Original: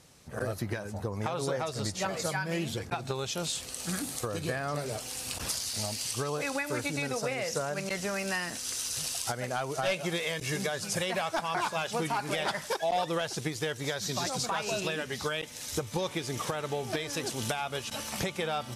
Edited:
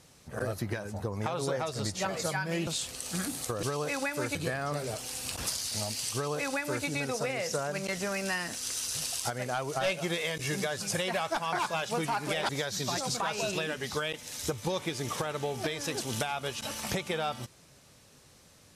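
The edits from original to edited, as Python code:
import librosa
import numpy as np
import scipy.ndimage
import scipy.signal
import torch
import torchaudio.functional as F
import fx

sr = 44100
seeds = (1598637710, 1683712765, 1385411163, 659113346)

y = fx.edit(x, sr, fx.cut(start_s=2.67, length_s=0.74),
    fx.duplicate(start_s=6.16, length_s=0.72, to_s=4.37),
    fx.cut(start_s=12.51, length_s=1.27), tone=tone)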